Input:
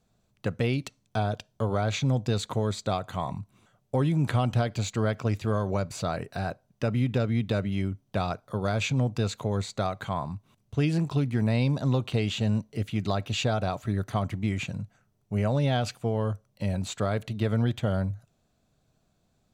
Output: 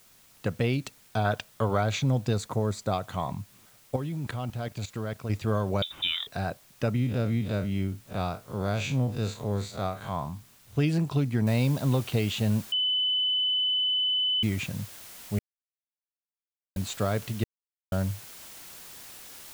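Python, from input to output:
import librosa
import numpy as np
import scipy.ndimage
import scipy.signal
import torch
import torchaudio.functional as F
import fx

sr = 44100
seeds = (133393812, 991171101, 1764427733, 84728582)

y = fx.peak_eq(x, sr, hz=1600.0, db=fx.line((1.24, 11.5), (1.82, 4.5)), octaves=2.1, at=(1.24, 1.82), fade=0.02)
y = fx.peak_eq(y, sr, hz=3100.0, db=-12.0, octaves=0.76, at=(2.33, 2.93))
y = fx.level_steps(y, sr, step_db=16, at=(3.96, 5.3))
y = fx.freq_invert(y, sr, carrier_hz=3700, at=(5.82, 6.27))
y = fx.spec_blur(y, sr, span_ms=86.0, at=(6.96, 10.76))
y = fx.noise_floor_step(y, sr, seeds[0], at_s=11.47, before_db=-58, after_db=-46, tilt_db=0.0)
y = fx.edit(y, sr, fx.bleep(start_s=12.72, length_s=1.71, hz=3010.0, db=-23.0),
    fx.silence(start_s=15.39, length_s=1.37),
    fx.silence(start_s=17.44, length_s=0.48), tone=tone)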